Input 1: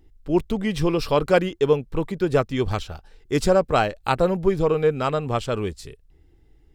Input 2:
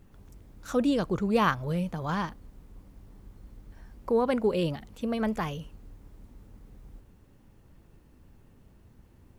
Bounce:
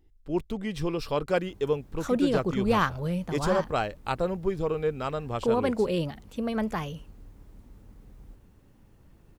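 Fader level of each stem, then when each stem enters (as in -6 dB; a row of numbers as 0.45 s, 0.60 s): -8.0 dB, 0.0 dB; 0.00 s, 1.35 s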